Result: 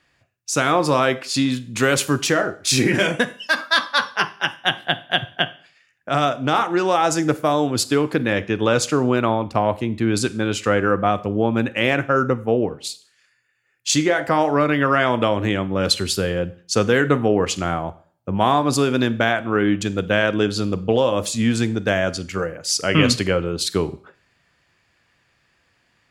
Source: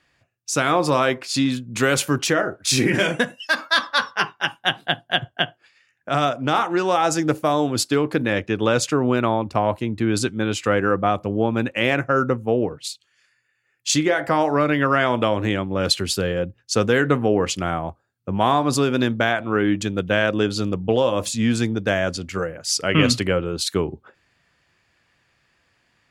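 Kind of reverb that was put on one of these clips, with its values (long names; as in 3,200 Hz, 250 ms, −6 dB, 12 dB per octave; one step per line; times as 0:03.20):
four-comb reverb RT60 0.48 s, combs from 31 ms, DRR 16 dB
level +1 dB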